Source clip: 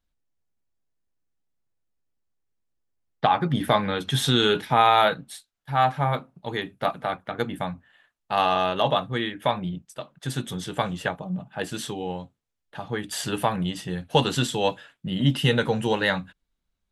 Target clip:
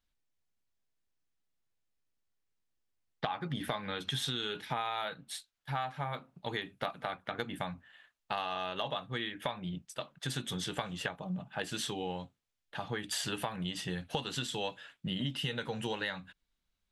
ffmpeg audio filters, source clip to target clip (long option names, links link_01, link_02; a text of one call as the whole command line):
ffmpeg -i in.wav -af "equalizer=frequency=3300:width_type=o:width=2.9:gain=6.5,acompressor=threshold=-27dB:ratio=10,volume=-5dB" out.wav